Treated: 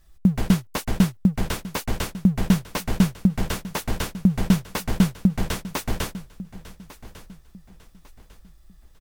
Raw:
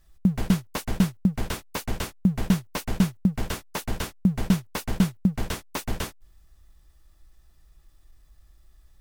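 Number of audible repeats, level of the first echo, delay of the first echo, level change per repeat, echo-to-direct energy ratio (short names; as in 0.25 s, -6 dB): 2, -17.0 dB, 1.149 s, -9.5 dB, -16.5 dB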